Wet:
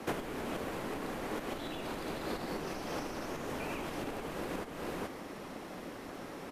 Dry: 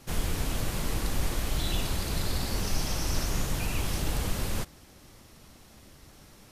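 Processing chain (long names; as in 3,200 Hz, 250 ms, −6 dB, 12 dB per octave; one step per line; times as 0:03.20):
high-pass filter 47 Hz 6 dB per octave
low-shelf EQ 470 Hz +10 dB
single-tap delay 431 ms −11.5 dB
frequency shifter −33 Hz
downward compressor 16 to 1, threshold −34 dBFS, peak gain reduction 19 dB
three-way crossover with the lows and the highs turned down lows −24 dB, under 250 Hz, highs −13 dB, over 2,600 Hz
level +11 dB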